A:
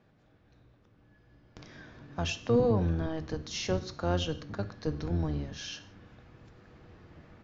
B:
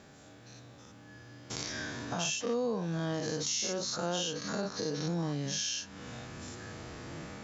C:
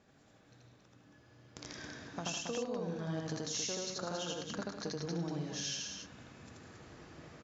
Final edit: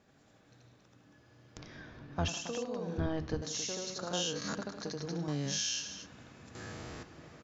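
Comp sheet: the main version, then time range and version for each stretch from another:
C
0:01.57–0:02.28: punch in from A
0:02.98–0:03.42: punch in from A
0:04.13–0:04.54: punch in from B
0:05.28–0:05.81: punch in from B
0:06.55–0:07.03: punch in from B

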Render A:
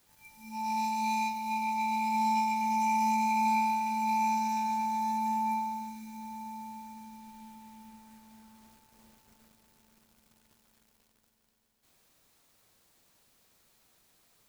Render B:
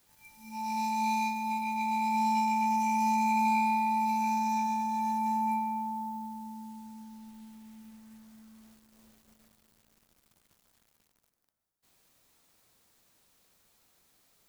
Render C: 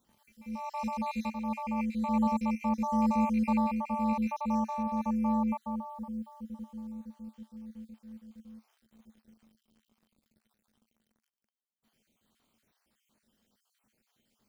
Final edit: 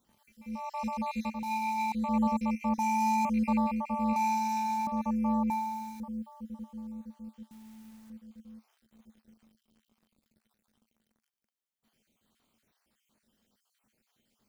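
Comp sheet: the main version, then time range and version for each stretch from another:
C
0:01.43–0:01.92: punch in from A
0:02.79–0:03.25: punch in from B
0:04.16–0:04.87: punch in from A
0:05.50–0:06.00: punch in from A
0:07.51–0:08.10: punch in from B

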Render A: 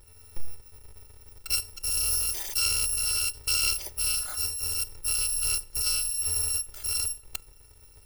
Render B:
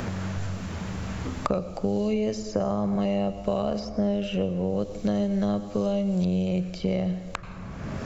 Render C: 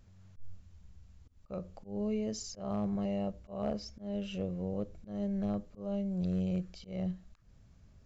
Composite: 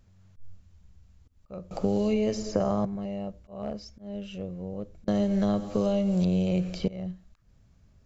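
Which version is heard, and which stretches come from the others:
C
0:01.71–0:02.85: punch in from B
0:05.08–0:06.88: punch in from B
not used: A

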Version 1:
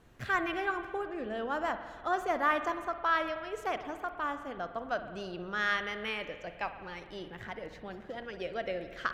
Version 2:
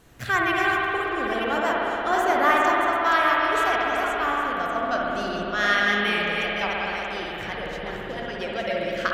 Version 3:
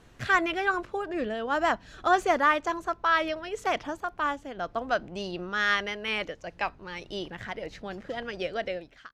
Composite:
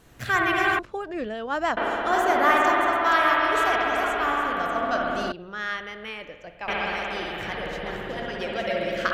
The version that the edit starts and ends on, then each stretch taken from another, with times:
2
0:00.79–0:01.77: punch in from 3
0:05.32–0:06.68: punch in from 1

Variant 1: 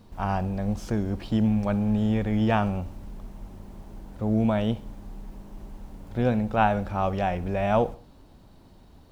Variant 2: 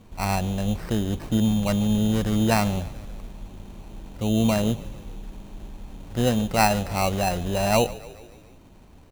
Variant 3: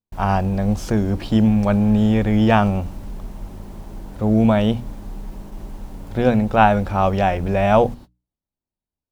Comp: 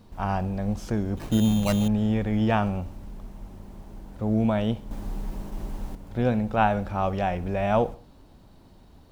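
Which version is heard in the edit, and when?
1
0:01.17–0:01.88: punch in from 2
0:04.91–0:05.95: punch in from 3

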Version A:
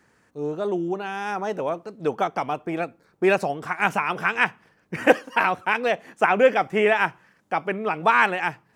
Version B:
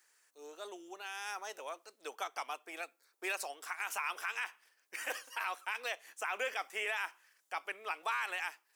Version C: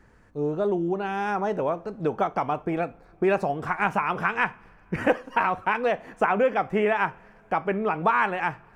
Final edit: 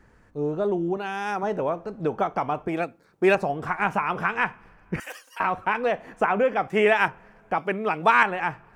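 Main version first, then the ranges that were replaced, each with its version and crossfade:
C
0:00.97–0:01.43: punch in from A
0:02.68–0:03.35: punch in from A
0:05.00–0:05.40: punch in from B
0:06.68–0:07.08: punch in from A
0:07.58–0:08.23: punch in from A

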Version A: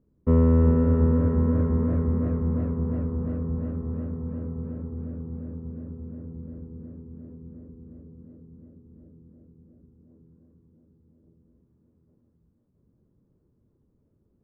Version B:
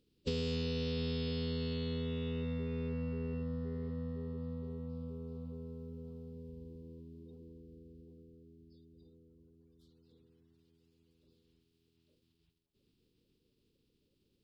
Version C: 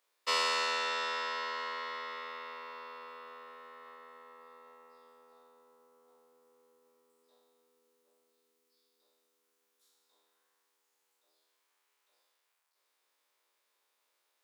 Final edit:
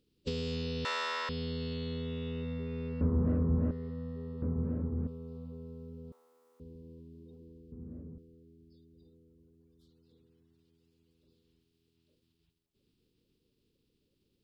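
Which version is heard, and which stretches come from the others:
B
0:00.85–0:01.29: punch in from C
0:03.01–0:03.71: punch in from A
0:04.42–0:05.07: punch in from A
0:06.12–0:06.60: punch in from C
0:07.72–0:08.18: punch in from A

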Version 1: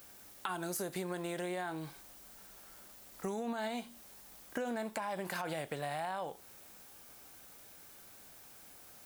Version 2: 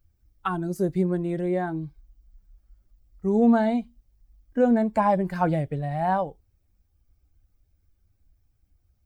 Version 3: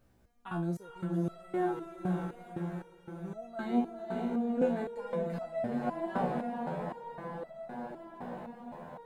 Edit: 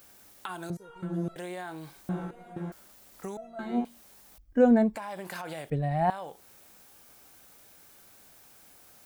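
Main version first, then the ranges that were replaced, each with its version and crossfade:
1
0:00.70–0:01.36: punch in from 3
0:02.09–0:02.72: punch in from 3
0:03.37–0:03.85: punch in from 3
0:04.38–0:04.96: punch in from 2
0:05.70–0:06.10: punch in from 2

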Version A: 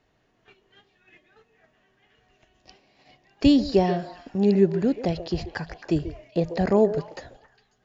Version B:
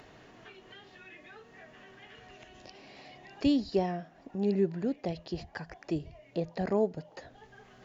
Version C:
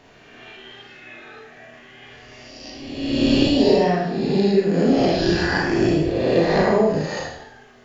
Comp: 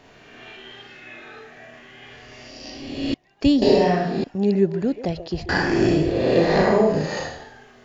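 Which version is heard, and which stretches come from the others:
C
0:03.14–0:03.62: punch in from A
0:04.24–0:05.49: punch in from A
not used: B

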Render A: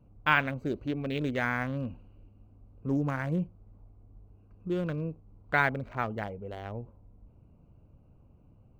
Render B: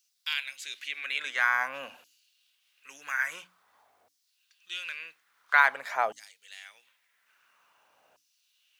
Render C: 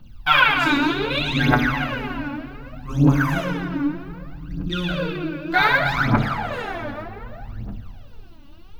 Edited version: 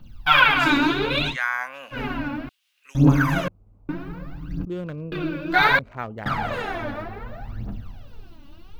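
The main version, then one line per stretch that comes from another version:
C
0:01.32–0:01.95: punch in from B, crossfade 0.10 s
0:02.49–0:02.95: punch in from B
0:03.48–0:03.89: punch in from A
0:04.65–0:05.12: punch in from A
0:05.79–0:06.26: punch in from A

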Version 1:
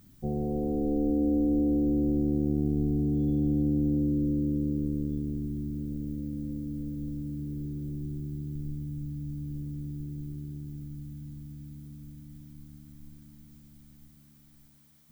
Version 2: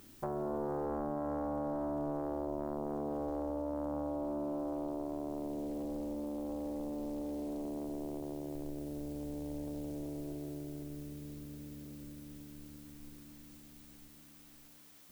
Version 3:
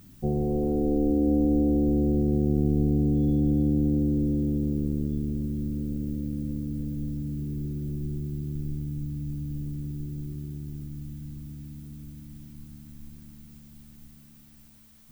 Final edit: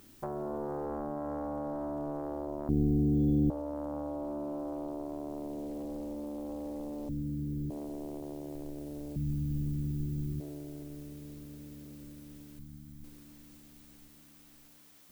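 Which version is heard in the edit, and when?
2
0:02.69–0:03.50: punch in from 1
0:07.09–0:07.70: punch in from 1
0:09.16–0:10.40: punch in from 3
0:12.59–0:13.04: punch in from 1

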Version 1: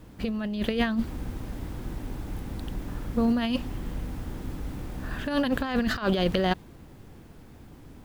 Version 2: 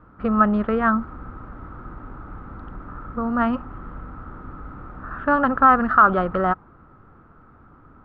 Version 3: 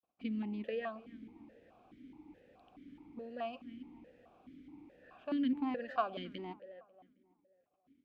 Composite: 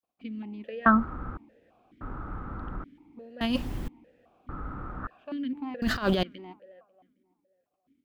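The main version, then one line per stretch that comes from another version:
3
0:00.86–0:01.37: punch in from 2
0:02.01–0:02.84: punch in from 2
0:03.41–0:03.88: punch in from 1
0:04.49–0:05.07: punch in from 2
0:05.82–0:06.23: punch in from 1

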